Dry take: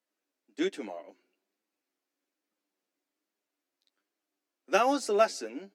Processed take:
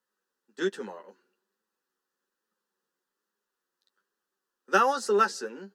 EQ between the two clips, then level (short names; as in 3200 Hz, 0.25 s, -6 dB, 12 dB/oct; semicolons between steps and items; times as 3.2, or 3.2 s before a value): low shelf 450 Hz +5.5 dB; bell 1900 Hz +14 dB 1.1 oct; fixed phaser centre 440 Hz, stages 8; +1.0 dB